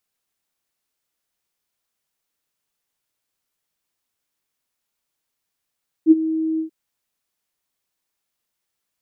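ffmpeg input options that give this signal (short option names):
-f lavfi -i "aevalsrc='0.596*sin(2*PI*319*t)':d=0.636:s=44100,afade=t=in:d=0.052,afade=t=out:st=0.052:d=0.029:silence=0.188,afade=t=out:st=0.53:d=0.106"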